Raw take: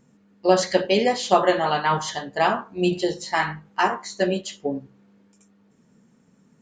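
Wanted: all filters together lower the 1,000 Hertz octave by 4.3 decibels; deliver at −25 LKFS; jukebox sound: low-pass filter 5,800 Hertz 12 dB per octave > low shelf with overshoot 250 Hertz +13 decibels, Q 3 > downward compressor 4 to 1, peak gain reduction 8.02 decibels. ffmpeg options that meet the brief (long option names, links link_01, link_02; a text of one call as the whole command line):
ffmpeg -i in.wav -af "lowpass=5800,lowshelf=frequency=250:width_type=q:width=3:gain=13,equalizer=frequency=1000:width_type=o:gain=-4,acompressor=threshold=-13dB:ratio=4,volume=-4.5dB" out.wav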